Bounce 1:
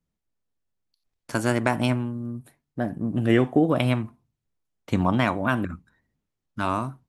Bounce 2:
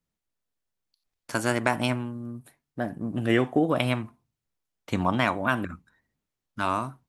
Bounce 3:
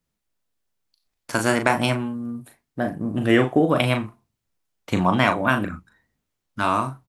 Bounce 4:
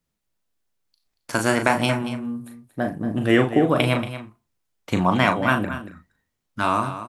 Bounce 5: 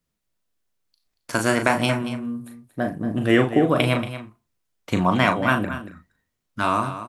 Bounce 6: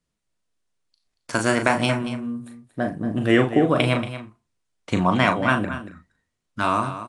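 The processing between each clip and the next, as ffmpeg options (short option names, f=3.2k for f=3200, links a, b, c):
-af "lowshelf=f=460:g=-6.5,volume=1dB"
-filter_complex "[0:a]asplit=2[a][b];[b]adelay=38,volume=-7dB[c];[a][c]amix=inputs=2:normalize=0,volume=4.5dB"
-af "aecho=1:1:231:0.251"
-af "bandreject=f=840:w=17"
-ar 22050 -c:a aac -b:a 96k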